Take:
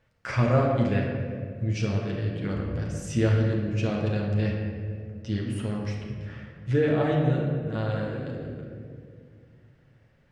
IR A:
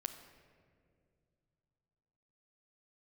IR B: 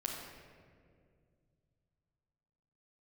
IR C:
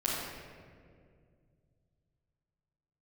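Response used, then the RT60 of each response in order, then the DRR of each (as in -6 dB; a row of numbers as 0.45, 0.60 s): B; 2.3, 2.1, 2.1 s; 7.0, -2.5, -9.5 dB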